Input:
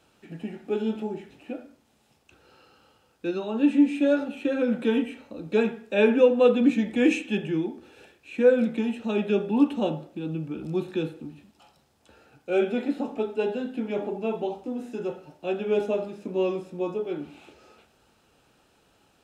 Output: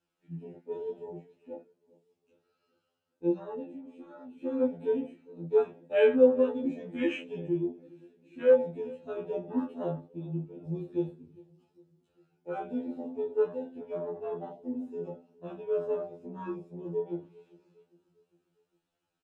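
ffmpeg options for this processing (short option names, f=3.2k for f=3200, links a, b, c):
-filter_complex "[0:a]afwtdn=0.0282,asettb=1/sr,asplit=3[a][b][c];[a]atrim=end=3.594[d];[b]atrim=start=3.59:end=4.39,asetpts=PTS-STARTPTS,afade=t=in:d=0.004:c=qsin,afade=t=out:st=0.796:d=0.004:c=qsin,acompressor=threshold=-32dB:ratio=3[e];[c]atrim=start=4.386[f];[d][e]acrossfade=d=0.004:c1=hsin:c2=qsin[g];[g][f]acrossfade=d=0.004:c1=qsin:c2=hsin,flanger=delay=17.5:depth=2.7:speed=0.58,asplit=2[h][i];[i]adelay=403,lowpass=f=1k:p=1,volume=-22.5dB,asplit=2[j][k];[k]adelay=403,lowpass=f=1k:p=1,volume=0.53,asplit=2[l][m];[m]adelay=403,lowpass=f=1k:p=1,volume=0.53,asplit=2[n][o];[o]adelay=403,lowpass=f=1k:p=1,volume=0.53[p];[j][l][n][p]amix=inputs=4:normalize=0[q];[h][q]amix=inputs=2:normalize=0,afftfilt=real='re*2*eq(mod(b,4),0)':imag='im*2*eq(mod(b,4),0)':win_size=2048:overlap=0.75"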